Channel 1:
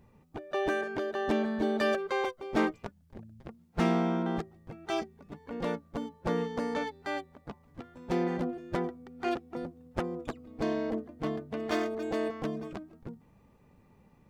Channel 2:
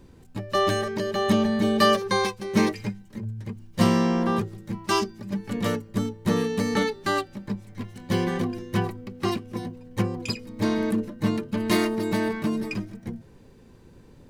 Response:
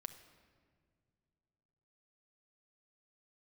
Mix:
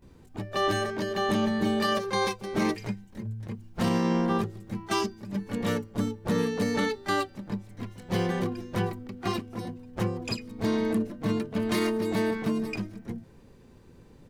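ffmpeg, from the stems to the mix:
-filter_complex "[0:a]volume=-4dB[link_01];[1:a]adelay=22,volume=-2.5dB[link_02];[link_01][link_02]amix=inputs=2:normalize=0,alimiter=limit=-17dB:level=0:latency=1:release=22"

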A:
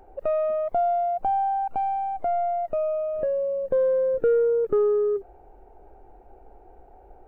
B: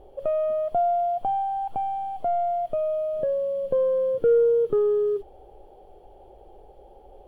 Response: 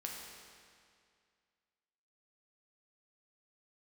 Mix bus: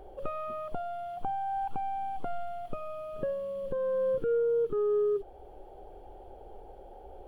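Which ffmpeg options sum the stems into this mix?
-filter_complex "[0:a]volume=-3dB[link_01];[1:a]volume=-1dB[link_02];[link_01][link_02]amix=inputs=2:normalize=0,alimiter=limit=-23dB:level=0:latency=1:release=393"

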